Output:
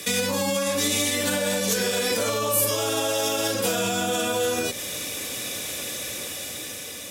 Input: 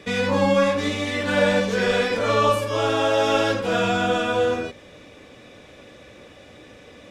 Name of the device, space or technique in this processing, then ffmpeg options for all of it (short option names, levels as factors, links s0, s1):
FM broadcast chain: -filter_complex "[0:a]highpass=68,dynaudnorm=f=680:g=5:m=2.37,acrossover=split=90|870[s0][s1][s2];[s0]acompressor=threshold=0.00398:ratio=4[s3];[s1]acompressor=threshold=0.1:ratio=4[s4];[s2]acompressor=threshold=0.0224:ratio=4[s5];[s3][s4][s5]amix=inputs=3:normalize=0,aemphasis=mode=production:type=75fm,alimiter=limit=0.112:level=0:latency=1:release=138,asoftclip=type=hard:threshold=0.0891,lowpass=f=15000:w=0.5412,lowpass=f=15000:w=1.3066,aemphasis=mode=production:type=75fm,volume=1.33"